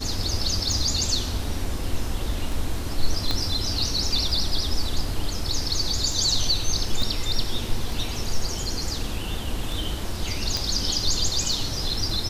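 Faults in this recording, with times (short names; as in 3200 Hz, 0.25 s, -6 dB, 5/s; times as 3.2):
tick 33 1/3 rpm
3.31 pop -11 dBFS
7.02 gap 2.4 ms
10.57 pop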